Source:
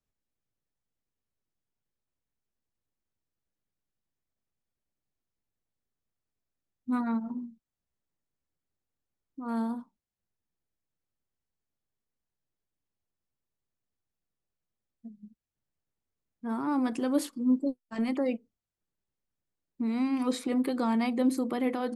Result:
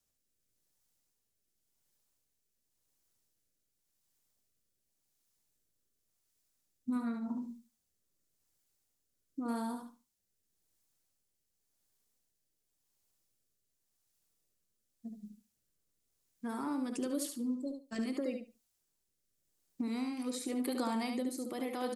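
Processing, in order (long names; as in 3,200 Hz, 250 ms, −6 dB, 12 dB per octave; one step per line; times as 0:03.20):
bass and treble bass −4 dB, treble +12 dB
downward compressor 6 to 1, threshold −38 dBFS, peak gain reduction 15 dB
rotating-speaker cabinet horn 0.9 Hz
repeating echo 72 ms, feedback 18%, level −6 dB
level +5 dB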